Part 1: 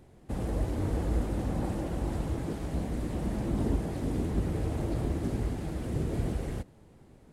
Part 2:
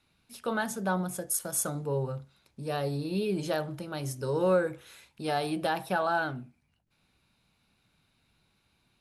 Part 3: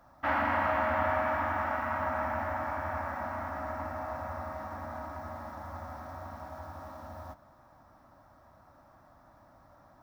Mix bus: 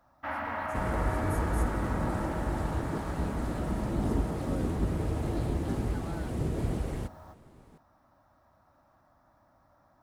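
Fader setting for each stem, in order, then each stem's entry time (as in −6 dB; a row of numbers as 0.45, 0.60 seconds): 0.0, −19.0, −6.0 decibels; 0.45, 0.00, 0.00 seconds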